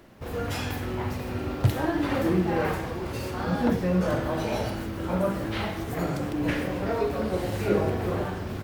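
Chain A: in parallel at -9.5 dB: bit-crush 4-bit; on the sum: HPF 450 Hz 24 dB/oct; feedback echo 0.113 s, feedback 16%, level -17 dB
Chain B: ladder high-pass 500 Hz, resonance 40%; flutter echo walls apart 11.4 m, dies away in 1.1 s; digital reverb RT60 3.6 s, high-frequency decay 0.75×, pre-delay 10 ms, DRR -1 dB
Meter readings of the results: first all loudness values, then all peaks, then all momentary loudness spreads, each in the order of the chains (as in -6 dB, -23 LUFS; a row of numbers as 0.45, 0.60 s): -30.0, -31.5 LUFS; -13.0, -18.0 dBFS; 9, 7 LU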